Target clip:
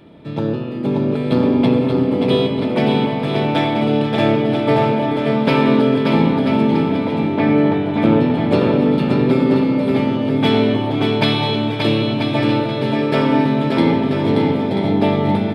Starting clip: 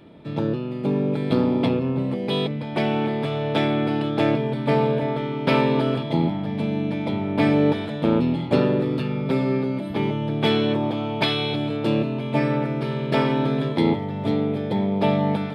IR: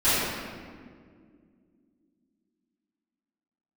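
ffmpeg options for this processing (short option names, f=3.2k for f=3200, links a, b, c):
-filter_complex "[0:a]asettb=1/sr,asplit=3[a][b][c];[a]atrim=end=6.834[d];[b]atrim=start=6.83:end=7.94,asetpts=PTS-STARTPTS,afade=t=in:d=0.004:c=qsin,afade=t=out:st=1.106:d=0.004:c=qsin,lowpass=2.7k[e];[c]atrim=start=7.936[f];[d][e]acrossfade=d=0.004:c1=hsin:c2=qsin[g];[g][f]acrossfade=d=0.004:c1=qsin:c2=hsin,aecho=1:1:580|986|1270|1469|1608:0.631|0.398|0.251|0.158|0.1,asplit=2[h][i];[1:a]atrim=start_sample=2205,asetrate=52920,aresample=44100,adelay=54[j];[i][j]afir=irnorm=-1:irlink=0,volume=-23.5dB[k];[h][k]amix=inputs=2:normalize=0,volume=3dB"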